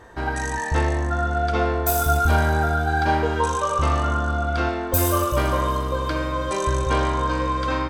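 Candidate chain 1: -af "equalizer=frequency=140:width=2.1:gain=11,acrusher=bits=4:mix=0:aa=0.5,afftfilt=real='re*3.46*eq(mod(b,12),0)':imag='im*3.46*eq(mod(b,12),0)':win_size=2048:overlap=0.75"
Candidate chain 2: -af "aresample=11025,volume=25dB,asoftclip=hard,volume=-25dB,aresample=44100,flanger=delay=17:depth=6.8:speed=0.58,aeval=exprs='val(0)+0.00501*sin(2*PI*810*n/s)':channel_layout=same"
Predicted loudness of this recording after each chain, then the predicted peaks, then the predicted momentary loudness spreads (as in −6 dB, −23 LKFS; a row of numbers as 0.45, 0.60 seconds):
−24.0, −30.5 LKFS; −8.5, −22.5 dBFS; 6, 2 LU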